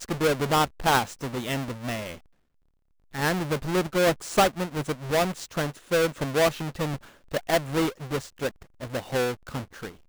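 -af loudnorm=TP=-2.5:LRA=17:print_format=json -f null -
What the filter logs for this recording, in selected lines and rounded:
"input_i" : "-27.3",
"input_tp" : "-8.6",
"input_lra" : "4.4",
"input_thresh" : "-37.6",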